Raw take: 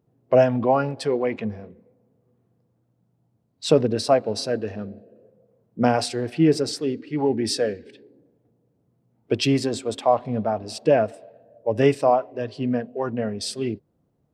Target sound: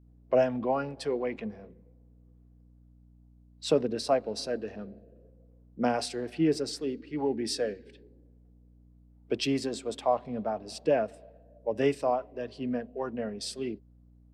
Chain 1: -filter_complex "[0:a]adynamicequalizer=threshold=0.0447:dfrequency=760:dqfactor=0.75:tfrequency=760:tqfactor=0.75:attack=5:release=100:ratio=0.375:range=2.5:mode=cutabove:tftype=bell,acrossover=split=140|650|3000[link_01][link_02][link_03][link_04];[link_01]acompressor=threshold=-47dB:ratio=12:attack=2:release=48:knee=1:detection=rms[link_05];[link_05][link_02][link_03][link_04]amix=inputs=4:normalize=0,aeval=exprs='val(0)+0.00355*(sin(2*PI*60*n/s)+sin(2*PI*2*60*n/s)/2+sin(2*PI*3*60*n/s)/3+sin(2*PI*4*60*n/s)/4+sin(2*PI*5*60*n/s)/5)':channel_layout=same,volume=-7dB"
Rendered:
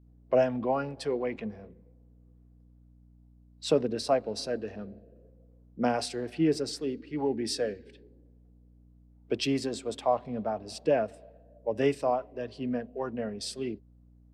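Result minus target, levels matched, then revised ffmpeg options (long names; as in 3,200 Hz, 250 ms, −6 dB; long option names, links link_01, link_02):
downward compressor: peak gain reduction −10 dB
-filter_complex "[0:a]adynamicequalizer=threshold=0.0447:dfrequency=760:dqfactor=0.75:tfrequency=760:tqfactor=0.75:attack=5:release=100:ratio=0.375:range=2.5:mode=cutabove:tftype=bell,acrossover=split=140|650|3000[link_01][link_02][link_03][link_04];[link_01]acompressor=threshold=-58dB:ratio=12:attack=2:release=48:knee=1:detection=rms[link_05];[link_05][link_02][link_03][link_04]amix=inputs=4:normalize=0,aeval=exprs='val(0)+0.00355*(sin(2*PI*60*n/s)+sin(2*PI*2*60*n/s)/2+sin(2*PI*3*60*n/s)/3+sin(2*PI*4*60*n/s)/4+sin(2*PI*5*60*n/s)/5)':channel_layout=same,volume=-7dB"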